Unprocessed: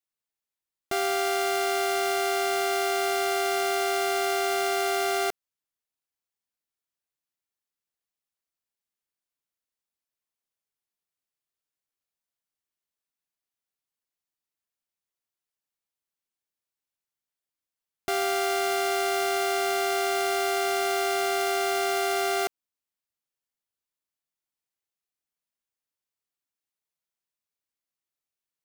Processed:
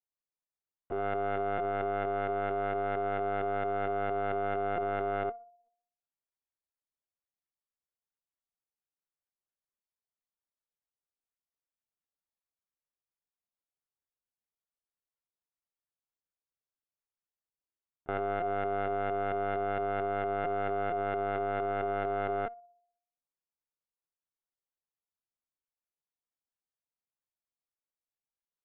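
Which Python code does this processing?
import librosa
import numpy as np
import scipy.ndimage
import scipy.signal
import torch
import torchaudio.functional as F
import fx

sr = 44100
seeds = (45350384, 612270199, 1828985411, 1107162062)

y = fx.filter_lfo_lowpass(x, sr, shape='saw_up', hz=4.4, low_hz=690.0, high_hz=1700.0, q=1.1)
y = fx.echo_banded(y, sr, ms=63, feedback_pct=52, hz=590.0, wet_db=-14.5)
y = fx.lpc_vocoder(y, sr, seeds[0], excitation='pitch_kept', order=16)
y = y * librosa.db_to_amplitude(-6.5)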